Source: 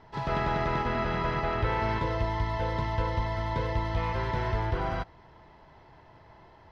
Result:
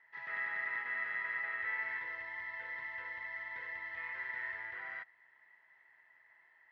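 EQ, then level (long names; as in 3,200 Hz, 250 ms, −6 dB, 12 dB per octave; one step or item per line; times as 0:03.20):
resonant band-pass 1,900 Hz, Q 18
+9.0 dB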